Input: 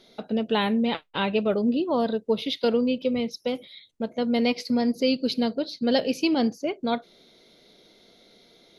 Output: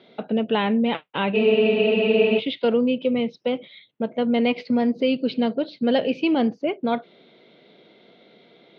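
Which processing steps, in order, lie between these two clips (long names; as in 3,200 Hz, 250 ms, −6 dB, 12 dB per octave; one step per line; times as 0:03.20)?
in parallel at −1 dB: brickwall limiter −22 dBFS, peak gain reduction 11.5 dB
on the sum: Chebyshev band-pass filter 130–3,000 Hz, order 3
frozen spectrum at 0:01.36, 1.01 s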